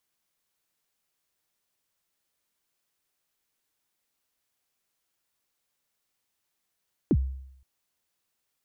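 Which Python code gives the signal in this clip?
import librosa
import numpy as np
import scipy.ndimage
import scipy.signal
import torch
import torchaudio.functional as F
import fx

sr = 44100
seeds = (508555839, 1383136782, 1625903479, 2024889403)

y = fx.drum_kick(sr, seeds[0], length_s=0.52, level_db=-16, start_hz=390.0, end_hz=66.0, sweep_ms=53.0, decay_s=0.75, click=False)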